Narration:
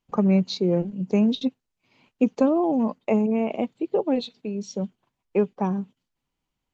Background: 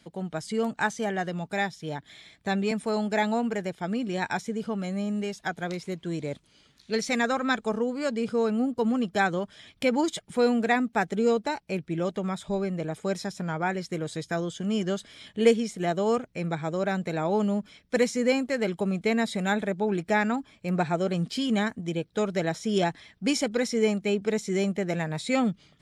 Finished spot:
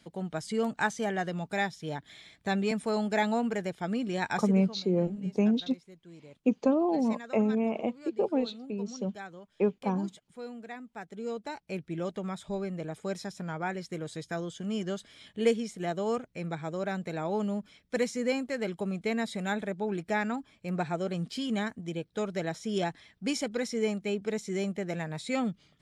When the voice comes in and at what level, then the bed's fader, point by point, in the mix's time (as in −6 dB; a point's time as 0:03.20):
4.25 s, −5.0 dB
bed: 0:04.43 −2 dB
0:04.86 −19 dB
0:10.86 −19 dB
0:11.75 −5.5 dB